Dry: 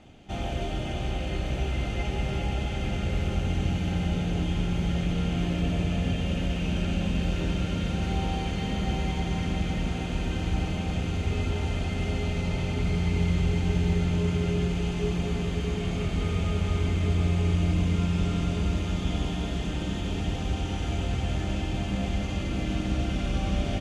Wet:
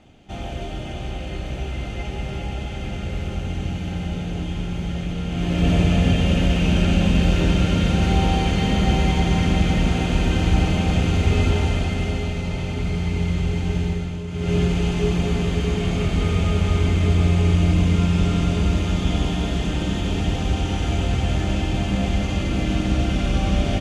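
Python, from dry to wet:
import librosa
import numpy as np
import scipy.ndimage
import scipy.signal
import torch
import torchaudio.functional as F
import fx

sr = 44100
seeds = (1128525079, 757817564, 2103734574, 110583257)

y = fx.gain(x, sr, db=fx.line((5.26, 0.5), (5.7, 9.5), (11.49, 9.5), (12.39, 2.5), (13.82, 2.5), (14.27, -5.5), (14.54, 7.0)))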